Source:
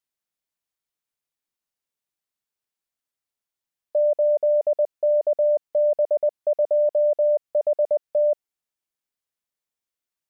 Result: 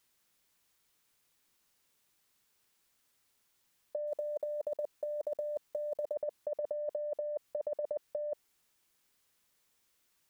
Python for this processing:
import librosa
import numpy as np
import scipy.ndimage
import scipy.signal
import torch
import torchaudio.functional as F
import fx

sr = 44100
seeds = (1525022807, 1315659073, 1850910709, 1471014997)

y = fx.block_float(x, sr, bits=7, at=(4.07, 6.15))
y = fx.peak_eq(y, sr, hz=670.0, db=-4.0, octaves=0.46)
y = fx.over_compress(y, sr, threshold_db=-31.0, ratio=-0.5)